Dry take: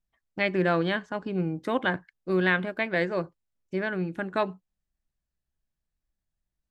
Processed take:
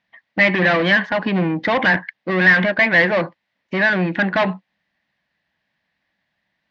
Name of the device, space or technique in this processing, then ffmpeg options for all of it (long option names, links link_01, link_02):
overdrive pedal into a guitar cabinet: -filter_complex "[0:a]asplit=2[link_01][link_02];[link_02]highpass=frequency=720:poles=1,volume=28dB,asoftclip=type=tanh:threshold=-10.5dB[link_03];[link_01][link_03]amix=inputs=2:normalize=0,lowpass=frequency=3000:poles=1,volume=-6dB,highpass=95,equalizer=frequency=200:width_type=q:width=4:gain=4,equalizer=frequency=400:width_type=q:width=4:gain=-10,equalizer=frequency=1300:width_type=q:width=4:gain=-7,equalizer=frequency=1900:width_type=q:width=4:gain=9,lowpass=frequency=4400:width=0.5412,lowpass=frequency=4400:width=1.3066,volume=2.5dB"